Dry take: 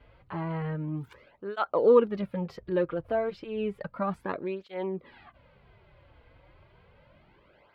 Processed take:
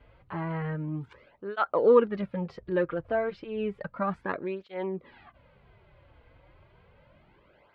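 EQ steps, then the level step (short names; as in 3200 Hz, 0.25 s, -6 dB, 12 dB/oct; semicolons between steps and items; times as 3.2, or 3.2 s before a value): dynamic EQ 1700 Hz, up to +6 dB, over -47 dBFS, Q 1.7; air absorption 89 m; 0.0 dB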